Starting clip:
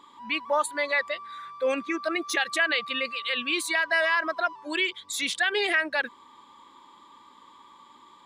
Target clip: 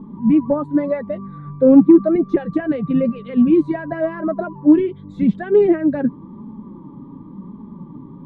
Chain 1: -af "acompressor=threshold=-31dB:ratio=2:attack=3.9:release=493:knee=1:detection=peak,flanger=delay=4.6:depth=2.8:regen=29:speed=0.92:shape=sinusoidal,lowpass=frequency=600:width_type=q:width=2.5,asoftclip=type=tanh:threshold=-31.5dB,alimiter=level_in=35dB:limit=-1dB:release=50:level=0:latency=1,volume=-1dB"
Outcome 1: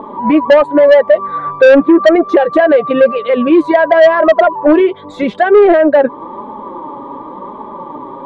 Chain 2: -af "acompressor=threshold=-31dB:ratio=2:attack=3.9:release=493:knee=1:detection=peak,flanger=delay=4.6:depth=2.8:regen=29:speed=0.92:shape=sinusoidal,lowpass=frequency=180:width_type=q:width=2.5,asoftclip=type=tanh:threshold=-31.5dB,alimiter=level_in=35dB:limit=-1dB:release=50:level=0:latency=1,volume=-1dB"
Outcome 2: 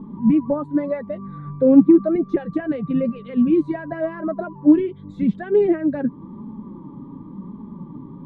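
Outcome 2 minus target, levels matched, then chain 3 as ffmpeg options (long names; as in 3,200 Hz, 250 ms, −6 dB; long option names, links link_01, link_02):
downward compressor: peak gain reduction +3.5 dB
-af "acompressor=threshold=-24dB:ratio=2:attack=3.9:release=493:knee=1:detection=peak,flanger=delay=4.6:depth=2.8:regen=29:speed=0.92:shape=sinusoidal,lowpass=frequency=180:width_type=q:width=2.5,asoftclip=type=tanh:threshold=-31.5dB,alimiter=level_in=35dB:limit=-1dB:release=50:level=0:latency=1,volume=-1dB"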